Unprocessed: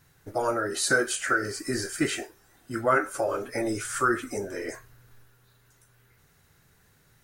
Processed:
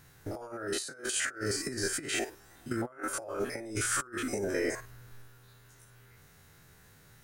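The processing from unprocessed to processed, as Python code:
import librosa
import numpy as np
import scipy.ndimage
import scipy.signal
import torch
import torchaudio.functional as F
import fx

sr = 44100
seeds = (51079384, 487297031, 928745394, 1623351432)

y = fx.spec_steps(x, sr, hold_ms=50)
y = fx.over_compress(y, sr, threshold_db=-34.0, ratio=-0.5)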